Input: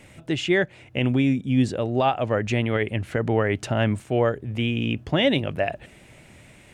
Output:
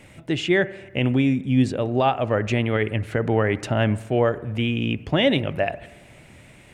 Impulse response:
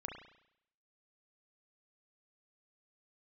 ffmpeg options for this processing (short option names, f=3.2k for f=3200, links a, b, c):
-filter_complex "[0:a]asplit=2[a][b];[1:a]atrim=start_sample=2205,asetrate=31752,aresample=44100,lowpass=f=7.2k:w=0.5412,lowpass=f=7.2k:w=1.3066[c];[b][c]afir=irnorm=-1:irlink=0,volume=-13dB[d];[a][d]amix=inputs=2:normalize=0"